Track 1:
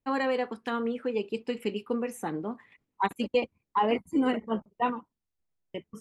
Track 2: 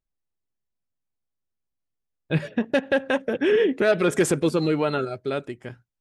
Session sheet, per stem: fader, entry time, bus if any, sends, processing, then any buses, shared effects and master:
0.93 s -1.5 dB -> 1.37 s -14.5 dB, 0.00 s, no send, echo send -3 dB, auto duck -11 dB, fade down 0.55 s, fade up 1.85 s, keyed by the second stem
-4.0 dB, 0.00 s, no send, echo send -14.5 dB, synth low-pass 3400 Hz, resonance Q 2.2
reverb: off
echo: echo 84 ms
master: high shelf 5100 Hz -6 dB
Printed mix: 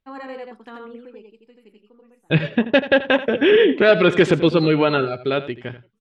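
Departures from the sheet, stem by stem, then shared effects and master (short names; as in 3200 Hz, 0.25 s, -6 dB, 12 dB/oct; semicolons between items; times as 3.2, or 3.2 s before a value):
stem 1 -1.5 dB -> -7.5 dB; stem 2 -4.0 dB -> +5.5 dB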